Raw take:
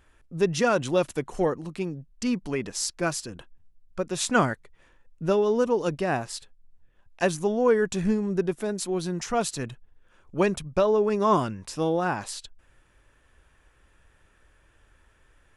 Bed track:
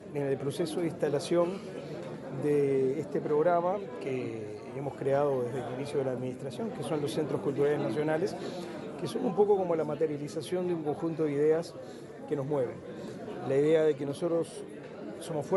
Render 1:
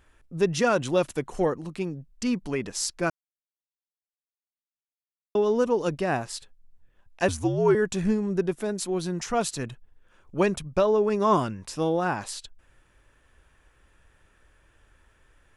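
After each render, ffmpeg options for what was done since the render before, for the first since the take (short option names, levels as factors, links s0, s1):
-filter_complex "[0:a]asettb=1/sr,asplit=3[s0][s1][s2];[s0]atrim=end=7.284[s3];[s1]atrim=start=7.28:end=7.75,asetpts=PTS-STARTPTS,afade=t=in:d=0.004:c=qsin,afade=t=out:st=0.466:d=0.004:c=qsin,afreqshift=-73[s4];[s2]atrim=start=7.746[s5];[s3][s4]acrossfade=d=0.004:c1=hsin:c2=qsin[s6];[s6][s5]acrossfade=d=0.004:c1=qsin:c2=hsin,asplit=3[s7][s8][s9];[s7]atrim=end=3.1,asetpts=PTS-STARTPTS,afade=t=out:st=3.096:d=0.004:c=hsin[s10];[s8]atrim=start=3.1:end=5.35,asetpts=PTS-STARTPTS,volume=0[s11];[s9]atrim=start=5.35,asetpts=PTS-STARTPTS,afade=t=in:d=0.004:c=hsin[s12];[s10][s11][s12]concat=n=3:v=0:a=1"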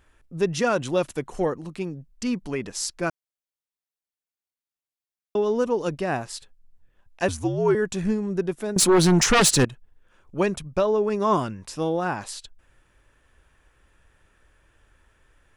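-filter_complex "[0:a]asettb=1/sr,asplit=3[s0][s1][s2];[s0]atrim=end=8.764[s3];[s1]atrim=start=8.76:end=9.65,asetpts=PTS-STARTPTS,afade=t=in:d=0.004:c=qsin,afade=t=out:st=0.886:d=0.004:c=qsin,aeval=exprs='0.237*sin(PI/2*3.98*val(0)/0.237)':c=same[s4];[s2]atrim=start=9.646[s5];[s3][s4]acrossfade=d=0.004:c1=hsin:c2=qsin[s6];[s6][s5]acrossfade=d=0.004:c1=qsin:c2=hsin"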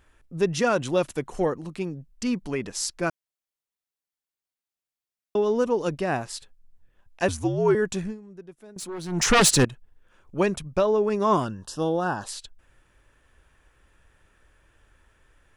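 -filter_complex "[0:a]asplit=3[s0][s1][s2];[s0]afade=t=out:st=11.44:d=0.02[s3];[s1]asuperstop=centerf=2200:order=8:qfactor=2.4,afade=t=in:st=11.44:d=0.02,afade=t=out:st=12.25:d=0.02[s4];[s2]afade=t=in:st=12.25:d=0.02[s5];[s3][s4][s5]amix=inputs=3:normalize=0,asplit=3[s6][s7][s8];[s6]atrim=end=8.22,asetpts=PTS-STARTPTS,afade=t=out:st=7.97:d=0.25:c=qua:silence=0.125893[s9];[s7]atrim=start=8.22:end=9.03,asetpts=PTS-STARTPTS,volume=0.126[s10];[s8]atrim=start=9.03,asetpts=PTS-STARTPTS,afade=t=in:d=0.25:c=qua:silence=0.125893[s11];[s9][s10][s11]concat=n=3:v=0:a=1"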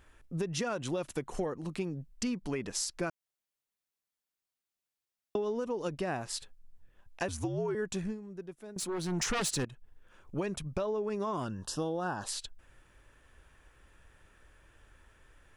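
-af "alimiter=limit=0.178:level=0:latency=1:release=99,acompressor=threshold=0.0282:ratio=6"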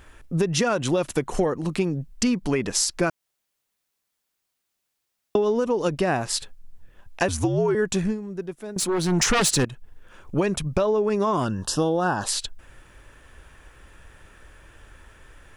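-af "volume=3.76"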